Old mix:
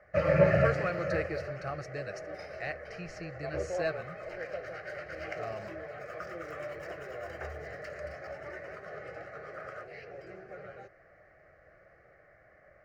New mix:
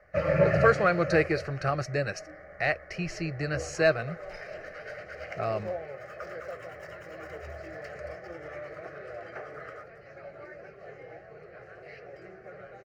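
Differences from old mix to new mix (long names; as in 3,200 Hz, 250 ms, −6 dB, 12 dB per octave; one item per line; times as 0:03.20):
speech +10.5 dB
second sound: entry +1.95 s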